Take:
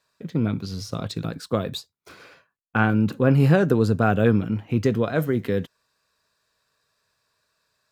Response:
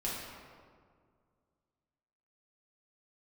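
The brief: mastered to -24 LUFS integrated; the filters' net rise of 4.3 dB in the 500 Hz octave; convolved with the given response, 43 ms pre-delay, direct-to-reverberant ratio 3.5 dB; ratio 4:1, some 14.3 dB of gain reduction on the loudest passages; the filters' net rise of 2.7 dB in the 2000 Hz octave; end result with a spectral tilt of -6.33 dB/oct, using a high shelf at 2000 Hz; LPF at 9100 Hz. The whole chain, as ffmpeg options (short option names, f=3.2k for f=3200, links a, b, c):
-filter_complex "[0:a]lowpass=9.1k,equalizer=f=500:t=o:g=5,highshelf=f=2k:g=-3,equalizer=f=2k:t=o:g=5.5,acompressor=threshold=-29dB:ratio=4,asplit=2[a][b];[1:a]atrim=start_sample=2205,adelay=43[c];[b][c]afir=irnorm=-1:irlink=0,volume=-7.5dB[d];[a][d]amix=inputs=2:normalize=0,volume=7dB"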